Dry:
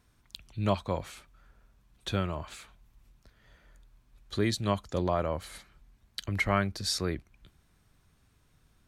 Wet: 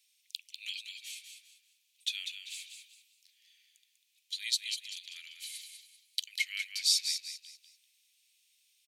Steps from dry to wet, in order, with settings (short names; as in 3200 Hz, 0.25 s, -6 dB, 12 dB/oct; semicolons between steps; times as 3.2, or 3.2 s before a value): steep high-pass 2400 Hz 48 dB/oct; on a send: frequency-shifting echo 0.195 s, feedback 32%, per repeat +31 Hz, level -7 dB; on the sum: gain +5 dB